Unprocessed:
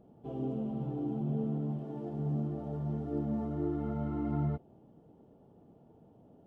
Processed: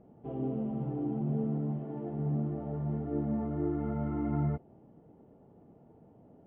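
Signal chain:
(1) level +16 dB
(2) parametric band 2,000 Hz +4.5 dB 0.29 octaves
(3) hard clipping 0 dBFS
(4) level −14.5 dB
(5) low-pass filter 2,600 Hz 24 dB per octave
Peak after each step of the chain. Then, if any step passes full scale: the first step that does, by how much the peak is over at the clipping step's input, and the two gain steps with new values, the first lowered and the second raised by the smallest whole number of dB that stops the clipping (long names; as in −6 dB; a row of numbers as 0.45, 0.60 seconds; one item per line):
−6.0, −6.0, −6.0, −20.5, −20.5 dBFS
no step passes full scale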